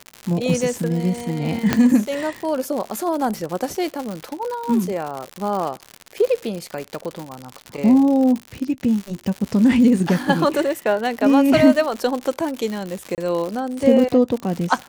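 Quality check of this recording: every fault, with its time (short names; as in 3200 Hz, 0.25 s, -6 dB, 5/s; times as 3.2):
crackle 130/s -24 dBFS
1.73 pop -2 dBFS
13.15–13.18 gap 28 ms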